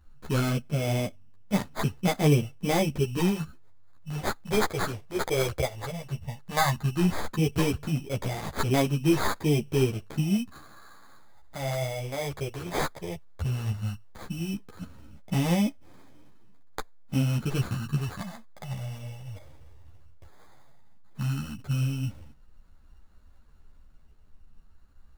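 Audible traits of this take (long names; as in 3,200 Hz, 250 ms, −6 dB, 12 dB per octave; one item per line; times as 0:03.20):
phaser sweep stages 4, 0.14 Hz, lowest notch 220–1,600 Hz
aliases and images of a low sample rate 2,800 Hz, jitter 0%
a shimmering, thickened sound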